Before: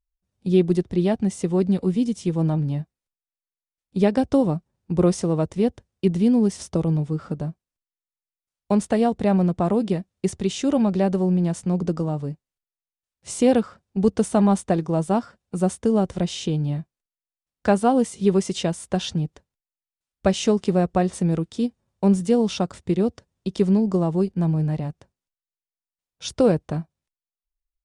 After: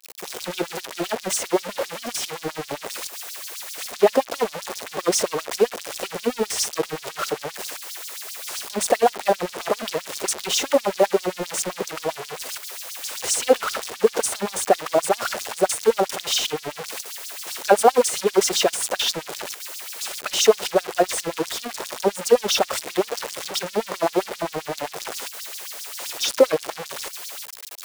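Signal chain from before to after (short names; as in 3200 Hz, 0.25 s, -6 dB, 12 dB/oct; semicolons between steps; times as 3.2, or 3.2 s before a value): zero-crossing step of -21.5 dBFS; LFO high-pass sine 7.6 Hz 410–5600 Hz; in parallel at -10 dB: bit-crush 4-bit; on the sum: expander -36 dBFS; gain -2.5 dB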